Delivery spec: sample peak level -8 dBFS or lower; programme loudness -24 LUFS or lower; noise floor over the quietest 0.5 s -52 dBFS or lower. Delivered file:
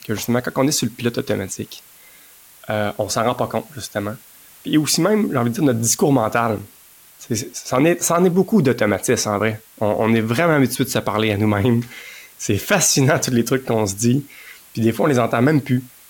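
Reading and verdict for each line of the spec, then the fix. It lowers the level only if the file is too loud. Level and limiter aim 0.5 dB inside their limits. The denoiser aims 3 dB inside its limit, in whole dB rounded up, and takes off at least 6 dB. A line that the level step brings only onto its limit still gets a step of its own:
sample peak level -5.5 dBFS: fail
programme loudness -18.5 LUFS: fail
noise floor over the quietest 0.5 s -47 dBFS: fail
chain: gain -6 dB

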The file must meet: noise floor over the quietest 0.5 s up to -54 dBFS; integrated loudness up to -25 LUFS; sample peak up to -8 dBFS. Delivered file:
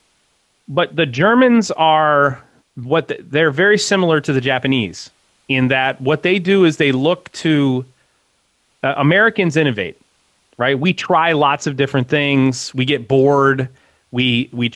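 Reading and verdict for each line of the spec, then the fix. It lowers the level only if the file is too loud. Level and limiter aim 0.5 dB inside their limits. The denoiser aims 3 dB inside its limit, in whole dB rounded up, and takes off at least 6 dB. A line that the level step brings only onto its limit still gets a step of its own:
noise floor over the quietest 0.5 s -62 dBFS: OK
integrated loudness -15.5 LUFS: fail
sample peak -3.0 dBFS: fail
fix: gain -10 dB

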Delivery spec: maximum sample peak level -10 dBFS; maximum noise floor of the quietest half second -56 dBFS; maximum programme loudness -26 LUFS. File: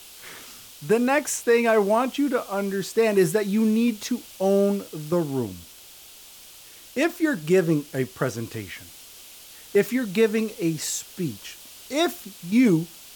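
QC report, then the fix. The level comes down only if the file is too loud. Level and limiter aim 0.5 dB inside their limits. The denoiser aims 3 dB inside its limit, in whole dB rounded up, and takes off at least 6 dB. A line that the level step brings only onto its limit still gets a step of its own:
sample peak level -8.5 dBFS: fail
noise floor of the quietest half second -47 dBFS: fail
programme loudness -23.5 LUFS: fail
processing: denoiser 9 dB, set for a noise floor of -47 dBFS; gain -3 dB

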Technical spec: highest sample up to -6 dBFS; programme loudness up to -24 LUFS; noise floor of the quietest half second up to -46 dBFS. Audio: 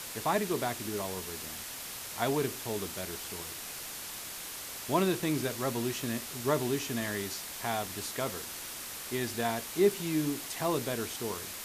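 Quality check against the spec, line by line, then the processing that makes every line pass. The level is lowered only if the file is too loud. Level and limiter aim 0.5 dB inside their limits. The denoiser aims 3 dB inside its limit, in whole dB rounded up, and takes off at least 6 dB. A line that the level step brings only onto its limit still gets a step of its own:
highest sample -13.5 dBFS: OK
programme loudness -33.0 LUFS: OK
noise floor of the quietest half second -42 dBFS: fail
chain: denoiser 7 dB, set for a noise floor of -42 dBFS

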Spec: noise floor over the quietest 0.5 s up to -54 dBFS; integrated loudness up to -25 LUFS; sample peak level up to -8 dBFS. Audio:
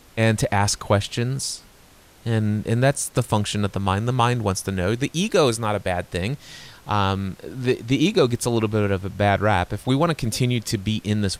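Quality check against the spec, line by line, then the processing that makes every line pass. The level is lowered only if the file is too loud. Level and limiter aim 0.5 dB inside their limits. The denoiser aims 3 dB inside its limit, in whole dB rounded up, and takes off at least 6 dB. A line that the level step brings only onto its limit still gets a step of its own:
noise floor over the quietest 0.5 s -51 dBFS: fail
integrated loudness -22.5 LUFS: fail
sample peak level -6.0 dBFS: fail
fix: denoiser 6 dB, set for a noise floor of -51 dBFS; gain -3 dB

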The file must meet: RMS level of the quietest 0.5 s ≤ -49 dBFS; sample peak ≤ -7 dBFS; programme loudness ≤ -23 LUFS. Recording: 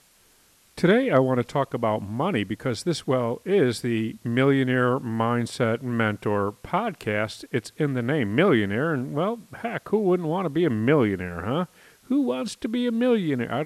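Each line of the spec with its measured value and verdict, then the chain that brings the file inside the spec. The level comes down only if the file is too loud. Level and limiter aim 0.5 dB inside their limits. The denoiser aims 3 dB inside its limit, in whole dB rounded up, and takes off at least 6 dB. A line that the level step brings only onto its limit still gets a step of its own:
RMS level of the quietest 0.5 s -59 dBFS: OK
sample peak -8.0 dBFS: OK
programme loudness -24.5 LUFS: OK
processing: none

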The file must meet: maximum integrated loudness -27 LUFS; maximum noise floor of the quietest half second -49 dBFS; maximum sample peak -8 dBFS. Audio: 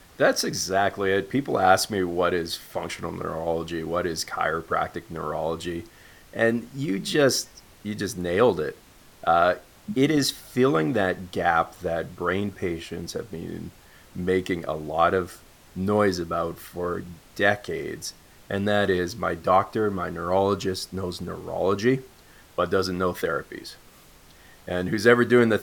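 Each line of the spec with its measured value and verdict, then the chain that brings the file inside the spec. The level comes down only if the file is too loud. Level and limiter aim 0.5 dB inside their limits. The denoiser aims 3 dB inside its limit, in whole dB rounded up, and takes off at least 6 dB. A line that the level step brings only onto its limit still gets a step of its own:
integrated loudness -25.0 LUFS: fail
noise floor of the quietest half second -52 dBFS: OK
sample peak -2.5 dBFS: fail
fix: gain -2.5 dB; limiter -8.5 dBFS

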